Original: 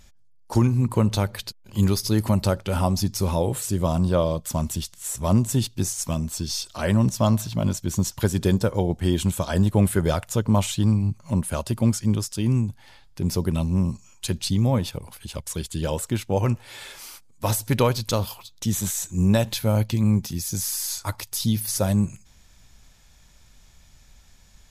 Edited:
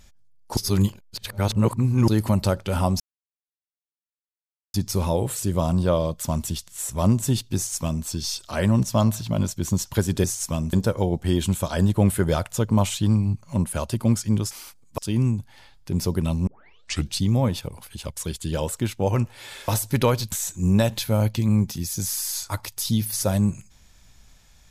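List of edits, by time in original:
0.57–2.08 s: reverse
3.00 s: insert silence 1.74 s
5.82–6.31 s: copy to 8.50 s
13.77 s: tape start 0.65 s
16.98–17.45 s: move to 12.28 s
18.09–18.87 s: delete

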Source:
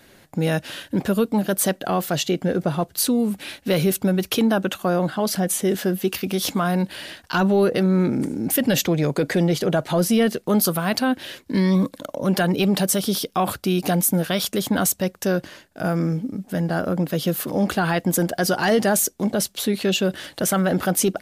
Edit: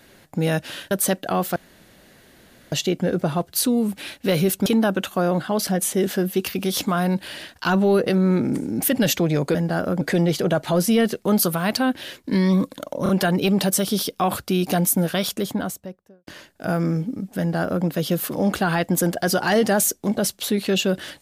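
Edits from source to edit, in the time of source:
0.91–1.49 s: delete
2.14 s: insert room tone 1.16 s
4.08–4.34 s: delete
12.25 s: stutter 0.03 s, 3 plays
14.27–15.43 s: studio fade out
16.55–17.01 s: copy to 9.23 s

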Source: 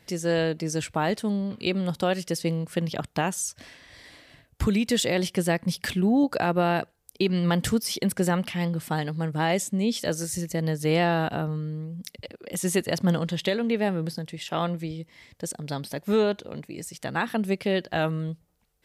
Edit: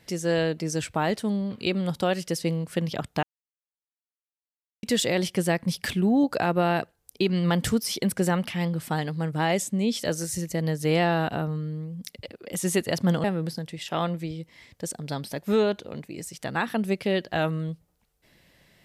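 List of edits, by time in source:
3.23–4.83 s: mute
13.24–13.84 s: delete

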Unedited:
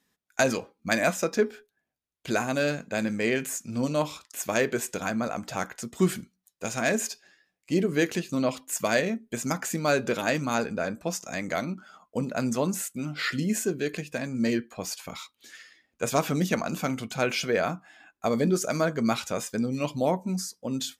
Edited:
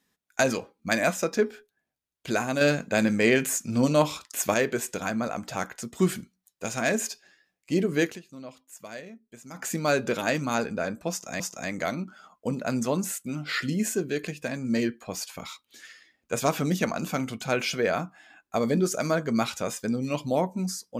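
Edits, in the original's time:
2.61–4.54 s: gain +5 dB
8.04–9.67 s: dip -16 dB, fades 0.15 s
11.10–11.40 s: loop, 2 plays

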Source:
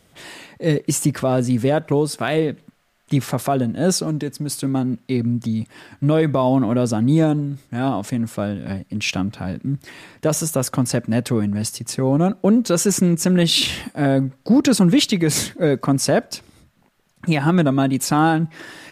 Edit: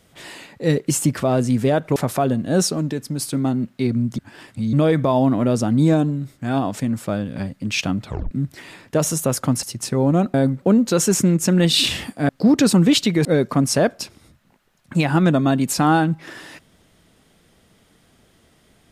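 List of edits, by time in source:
1.96–3.26 s: delete
5.48–6.03 s: reverse
9.35 s: tape stop 0.26 s
10.93–11.69 s: delete
14.07–14.35 s: move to 12.40 s
15.31–15.57 s: delete

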